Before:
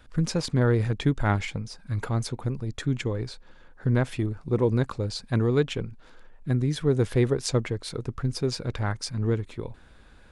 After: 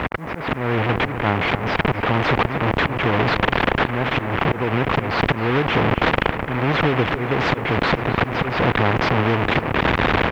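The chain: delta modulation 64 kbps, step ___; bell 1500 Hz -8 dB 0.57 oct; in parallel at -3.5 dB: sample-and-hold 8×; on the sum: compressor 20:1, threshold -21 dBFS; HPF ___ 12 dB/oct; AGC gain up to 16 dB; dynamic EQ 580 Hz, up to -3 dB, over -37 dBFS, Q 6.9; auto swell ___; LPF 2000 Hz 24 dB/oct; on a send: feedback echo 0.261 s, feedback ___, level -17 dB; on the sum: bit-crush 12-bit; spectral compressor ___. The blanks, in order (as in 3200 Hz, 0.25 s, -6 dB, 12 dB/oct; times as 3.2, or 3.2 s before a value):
-22 dBFS, 83 Hz, 0.24 s, 46%, 2:1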